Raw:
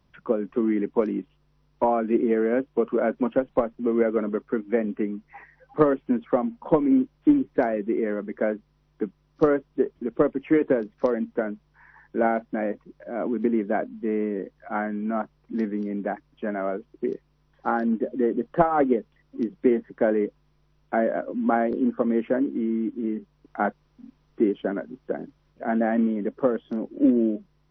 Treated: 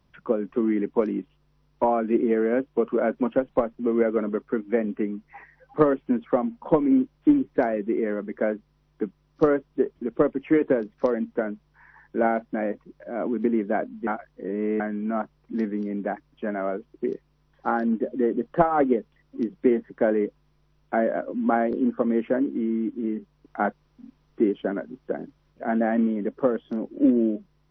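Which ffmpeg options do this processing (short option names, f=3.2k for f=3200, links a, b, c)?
-filter_complex "[0:a]asplit=3[a][b][c];[a]atrim=end=14.072[d];[b]atrim=start=14.068:end=14.802,asetpts=PTS-STARTPTS,areverse[e];[c]atrim=start=14.798[f];[d][e]acrossfade=d=0.004:c1=hsin:c2=hsin[g];[g][f]acrossfade=d=0.004:c1=hsin:c2=hsin"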